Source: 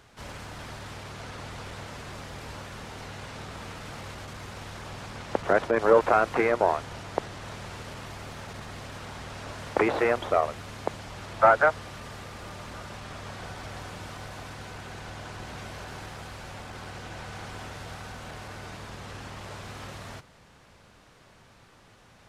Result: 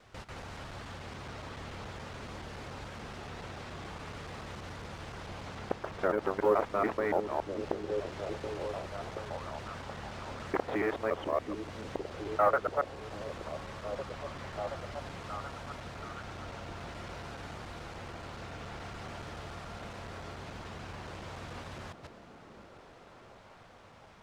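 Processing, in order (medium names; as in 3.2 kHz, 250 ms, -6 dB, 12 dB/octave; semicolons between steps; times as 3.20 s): time reversed locally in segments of 131 ms; treble shelf 9.4 kHz -9.5 dB; in parallel at +0.5 dB: compression, threshold -38 dBFS, peak gain reduction 22 dB; on the sum: companded quantiser 8-bit; tape speed -8%; on a send: repeats whose band climbs or falls 727 ms, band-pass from 250 Hz, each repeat 0.7 oct, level -4 dB; on the sum: trim -8.5 dB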